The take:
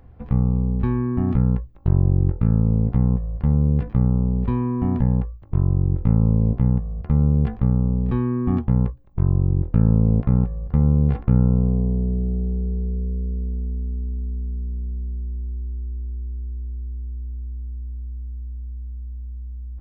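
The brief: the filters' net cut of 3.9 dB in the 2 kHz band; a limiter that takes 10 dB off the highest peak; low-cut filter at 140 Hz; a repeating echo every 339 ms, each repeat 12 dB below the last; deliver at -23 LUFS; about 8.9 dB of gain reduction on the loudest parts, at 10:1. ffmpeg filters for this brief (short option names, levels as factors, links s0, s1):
-af "highpass=140,equalizer=f=2000:t=o:g=-5,acompressor=threshold=0.0562:ratio=10,alimiter=level_in=1.33:limit=0.0631:level=0:latency=1,volume=0.75,aecho=1:1:339|678|1017:0.251|0.0628|0.0157,volume=4.73"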